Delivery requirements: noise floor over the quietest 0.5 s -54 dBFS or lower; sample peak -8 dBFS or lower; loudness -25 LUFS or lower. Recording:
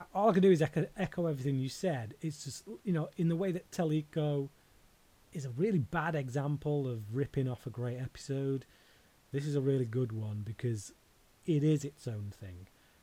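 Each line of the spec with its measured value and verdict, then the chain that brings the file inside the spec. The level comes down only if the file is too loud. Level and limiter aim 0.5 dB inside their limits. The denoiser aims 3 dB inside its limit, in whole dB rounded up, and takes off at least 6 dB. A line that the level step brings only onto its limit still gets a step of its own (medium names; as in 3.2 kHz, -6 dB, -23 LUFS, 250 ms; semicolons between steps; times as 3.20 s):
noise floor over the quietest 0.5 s -65 dBFS: pass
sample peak -16.0 dBFS: pass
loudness -34.5 LUFS: pass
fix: none needed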